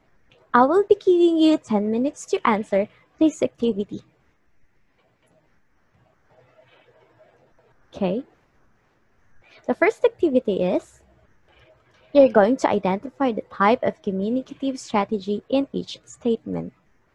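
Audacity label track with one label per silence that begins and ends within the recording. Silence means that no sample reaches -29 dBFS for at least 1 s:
3.970000	7.970000	silence
8.200000	9.690000	silence
10.790000	12.150000	silence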